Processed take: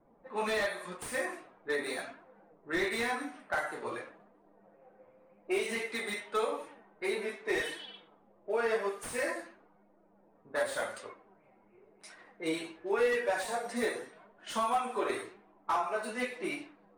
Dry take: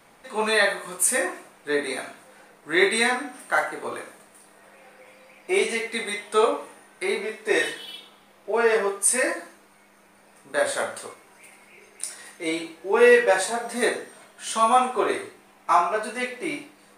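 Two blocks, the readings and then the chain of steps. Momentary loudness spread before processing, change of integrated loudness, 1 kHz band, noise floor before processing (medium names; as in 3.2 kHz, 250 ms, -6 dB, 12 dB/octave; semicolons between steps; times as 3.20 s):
15 LU, -11.0 dB, -10.5 dB, -55 dBFS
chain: coarse spectral quantiser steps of 15 dB; flange 0.9 Hz, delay 2.7 ms, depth 6.8 ms, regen +59%; compression 2.5:1, threshold -27 dBFS, peak gain reduction 9 dB; level-controlled noise filter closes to 550 Hz, open at -30.5 dBFS; slew-rate limiter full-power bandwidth 71 Hz; trim -1.5 dB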